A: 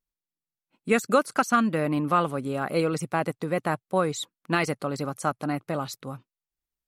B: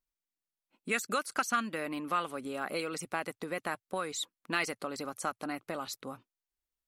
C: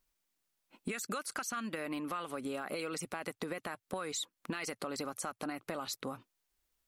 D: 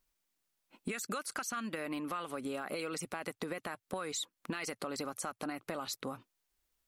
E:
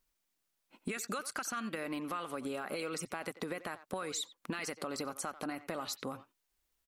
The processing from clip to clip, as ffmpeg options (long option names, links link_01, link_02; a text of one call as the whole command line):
ffmpeg -i in.wav -filter_complex "[0:a]acrossover=split=1400[link_01][link_02];[link_01]acompressor=threshold=-31dB:ratio=6[link_03];[link_03][link_02]amix=inputs=2:normalize=0,equalizer=frequency=140:width_type=o:width=0.55:gain=-13,volume=-2.5dB" out.wav
ffmpeg -i in.wav -af "alimiter=level_in=3dB:limit=-24dB:level=0:latency=1:release=57,volume=-3dB,acompressor=threshold=-46dB:ratio=6,volume=10dB" out.wav
ffmpeg -i in.wav -af anull out.wav
ffmpeg -i in.wav -filter_complex "[0:a]asplit=2[link_01][link_02];[link_02]adelay=90,highpass=300,lowpass=3400,asoftclip=type=hard:threshold=-32dB,volume=-14dB[link_03];[link_01][link_03]amix=inputs=2:normalize=0" out.wav